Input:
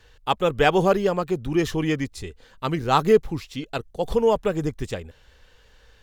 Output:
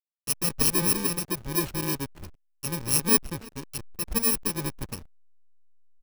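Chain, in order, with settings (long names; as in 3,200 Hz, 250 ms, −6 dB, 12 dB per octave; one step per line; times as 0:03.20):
samples in bit-reversed order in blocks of 64 samples
single-tap delay 323 ms −18.5 dB
slack as between gear wheels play −24.5 dBFS
level −4 dB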